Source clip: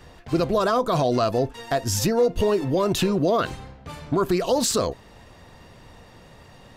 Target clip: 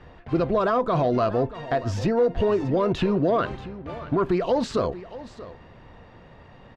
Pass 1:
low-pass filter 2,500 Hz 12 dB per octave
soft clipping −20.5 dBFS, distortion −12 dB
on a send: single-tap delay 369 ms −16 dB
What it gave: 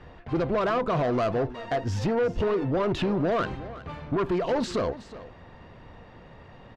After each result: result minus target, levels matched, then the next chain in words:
soft clipping: distortion +14 dB; echo 264 ms early
low-pass filter 2,500 Hz 12 dB per octave
soft clipping −10.5 dBFS, distortion −26 dB
on a send: single-tap delay 369 ms −16 dB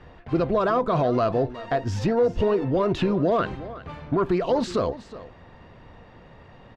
echo 264 ms early
low-pass filter 2,500 Hz 12 dB per octave
soft clipping −10.5 dBFS, distortion −26 dB
on a send: single-tap delay 633 ms −16 dB

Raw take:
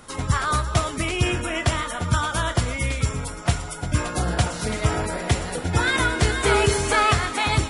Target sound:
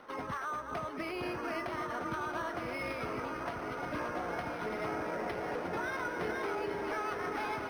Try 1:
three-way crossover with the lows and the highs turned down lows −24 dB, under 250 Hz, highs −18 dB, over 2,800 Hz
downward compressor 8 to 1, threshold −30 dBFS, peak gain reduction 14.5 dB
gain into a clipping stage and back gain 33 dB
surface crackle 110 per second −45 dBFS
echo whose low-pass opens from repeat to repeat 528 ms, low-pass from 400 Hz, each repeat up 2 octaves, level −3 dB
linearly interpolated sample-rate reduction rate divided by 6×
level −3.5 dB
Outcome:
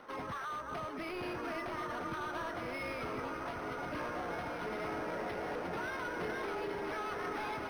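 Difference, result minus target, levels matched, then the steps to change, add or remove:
gain into a clipping stage and back: distortion +10 dB
change: gain into a clipping stage and back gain 26.5 dB

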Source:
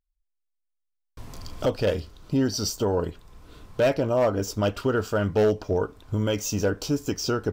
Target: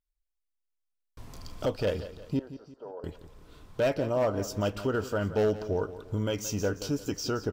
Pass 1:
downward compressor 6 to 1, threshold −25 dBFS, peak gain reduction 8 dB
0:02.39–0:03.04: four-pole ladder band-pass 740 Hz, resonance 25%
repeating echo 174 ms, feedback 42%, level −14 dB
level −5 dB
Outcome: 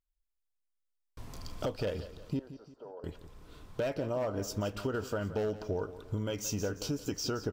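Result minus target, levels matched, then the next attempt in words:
downward compressor: peak gain reduction +8 dB
0:02.39–0:03.04: four-pole ladder band-pass 740 Hz, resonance 25%
repeating echo 174 ms, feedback 42%, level −14 dB
level −5 dB

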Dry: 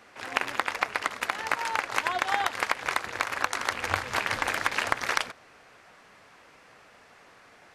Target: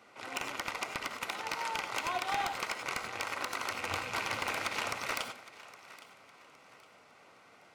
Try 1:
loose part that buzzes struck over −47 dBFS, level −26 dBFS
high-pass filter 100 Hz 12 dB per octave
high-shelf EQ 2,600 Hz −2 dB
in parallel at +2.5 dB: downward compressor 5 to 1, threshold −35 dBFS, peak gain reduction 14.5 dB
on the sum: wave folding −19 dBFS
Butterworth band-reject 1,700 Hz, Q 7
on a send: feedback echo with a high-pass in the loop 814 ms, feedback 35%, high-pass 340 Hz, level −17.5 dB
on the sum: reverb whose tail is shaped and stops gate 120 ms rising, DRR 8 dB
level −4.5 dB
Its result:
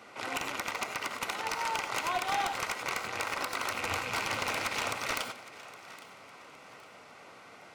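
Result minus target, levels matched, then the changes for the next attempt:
downward compressor: peak gain reduction +14.5 dB
remove: downward compressor 5 to 1, threshold −35 dBFS, peak gain reduction 14.5 dB

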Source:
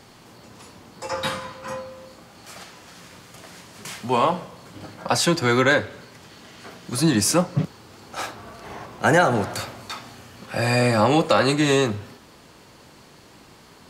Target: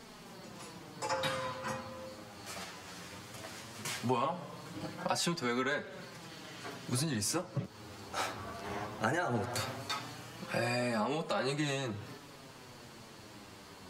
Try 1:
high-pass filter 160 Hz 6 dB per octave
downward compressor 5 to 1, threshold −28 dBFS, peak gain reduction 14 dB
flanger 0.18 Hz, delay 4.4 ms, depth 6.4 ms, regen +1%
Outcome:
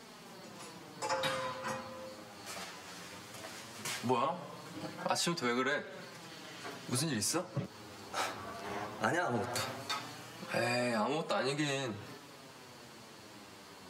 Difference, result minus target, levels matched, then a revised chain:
125 Hz band −3.0 dB
downward compressor 5 to 1, threshold −28 dBFS, peak gain reduction 14.5 dB
flanger 0.18 Hz, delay 4.4 ms, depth 6.4 ms, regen +1%

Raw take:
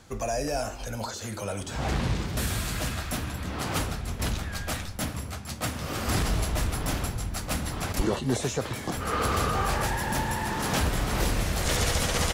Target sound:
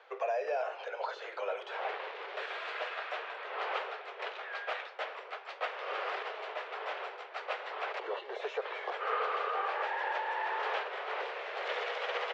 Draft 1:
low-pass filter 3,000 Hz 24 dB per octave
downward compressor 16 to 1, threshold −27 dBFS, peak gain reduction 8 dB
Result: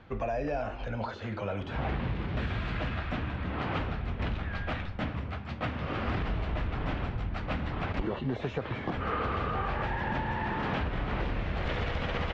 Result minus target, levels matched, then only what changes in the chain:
500 Hz band −2.5 dB
add after downward compressor: Butterworth high-pass 410 Hz 72 dB per octave

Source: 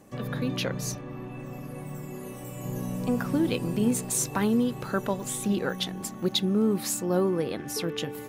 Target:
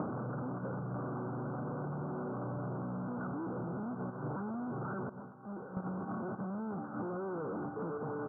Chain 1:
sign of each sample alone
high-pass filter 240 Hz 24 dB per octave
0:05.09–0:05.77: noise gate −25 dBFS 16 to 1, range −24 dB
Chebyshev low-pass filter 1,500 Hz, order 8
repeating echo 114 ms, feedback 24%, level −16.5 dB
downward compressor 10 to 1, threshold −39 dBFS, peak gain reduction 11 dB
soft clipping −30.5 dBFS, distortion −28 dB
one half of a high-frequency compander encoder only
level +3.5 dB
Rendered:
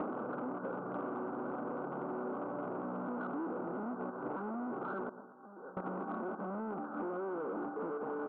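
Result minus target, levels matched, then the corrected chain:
125 Hz band −11.0 dB; soft clipping: distortion +17 dB
sign of each sample alone
high-pass filter 97 Hz 24 dB per octave
0:05.09–0:05.77: noise gate −25 dBFS 16 to 1, range −24 dB
Chebyshev low-pass filter 1,500 Hz, order 8
repeating echo 114 ms, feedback 24%, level −16.5 dB
downward compressor 10 to 1, threshold −39 dBFS, peak gain reduction 13 dB
soft clipping −21.5 dBFS, distortion −44 dB
one half of a high-frequency compander encoder only
level +3.5 dB

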